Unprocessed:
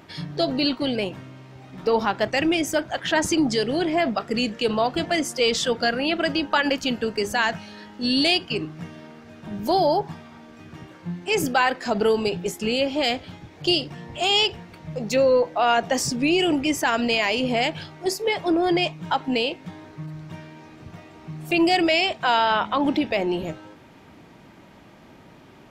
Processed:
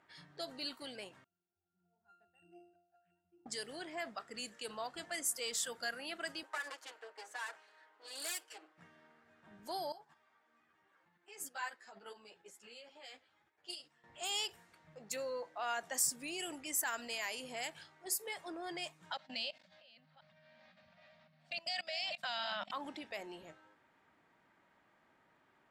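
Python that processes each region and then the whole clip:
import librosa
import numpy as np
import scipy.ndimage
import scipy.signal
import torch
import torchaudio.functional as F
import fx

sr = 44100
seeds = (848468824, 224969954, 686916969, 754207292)

y = fx.chain(x, sr, fx.auto_swell(attack_ms=391.0),
    fx.octave_resonator(note='F', decay_s=0.61),
    fx.resample_linear(factor=8), at=(1.24, 3.46))
y = fx.chain(y, sr, fx.lower_of_two(delay_ms=6.4),
    fx.highpass(hz=370.0, slope=24),
    fx.high_shelf(hz=3000.0, db=-8.0), at=(6.43, 8.78))
y = fx.chain(y, sr, fx.low_shelf(hz=210.0, db=-11.5),
    fx.level_steps(step_db=10),
    fx.ensemble(), at=(9.92, 14.04))
y = fx.chain(y, sr, fx.reverse_delay(ms=545, wet_db=-7.5),
    fx.curve_eq(hz=(140.0, 210.0, 400.0, 570.0, 900.0, 4600.0, 7200.0, 14000.0), db=(0, 15, -28, 14, -2, 14, -4, -23)),
    fx.level_steps(step_db=21), at=(19.12, 22.71))
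y = scipy.signal.lfilter([1.0, -0.97], [1.0], y)
y = fx.env_lowpass(y, sr, base_hz=2700.0, full_db=-30.5)
y = fx.band_shelf(y, sr, hz=3800.0, db=-10.0, octaves=1.7)
y = F.gain(torch.from_numpy(y), -1.0).numpy()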